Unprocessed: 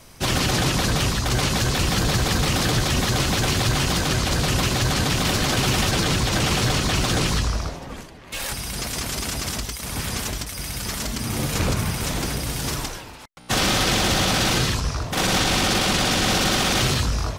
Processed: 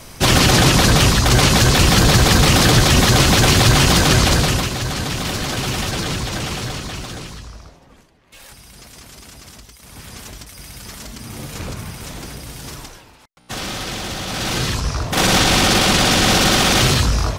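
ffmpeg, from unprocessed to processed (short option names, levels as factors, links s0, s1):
-af "volume=23.7,afade=t=out:st=4.24:d=0.46:silence=0.316228,afade=t=out:st=6.11:d=1.26:silence=0.266073,afade=t=in:st=9.72:d=0.75:silence=0.473151,afade=t=in:st=14.25:d=0.97:silence=0.237137"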